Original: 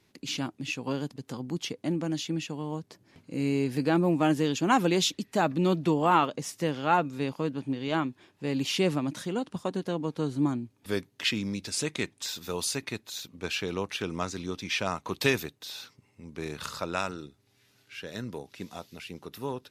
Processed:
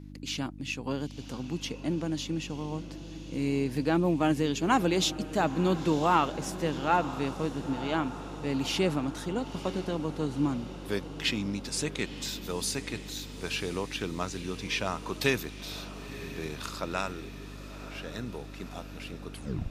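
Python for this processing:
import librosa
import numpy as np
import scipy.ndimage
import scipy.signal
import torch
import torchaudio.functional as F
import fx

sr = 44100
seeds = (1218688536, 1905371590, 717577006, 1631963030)

y = fx.tape_stop_end(x, sr, length_s=0.42)
y = fx.dmg_buzz(y, sr, base_hz=50.0, harmonics=6, level_db=-44.0, tilt_db=-2, odd_only=False)
y = fx.echo_diffused(y, sr, ms=977, feedback_pct=62, wet_db=-13.5)
y = F.gain(torch.from_numpy(y), -1.5).numpy()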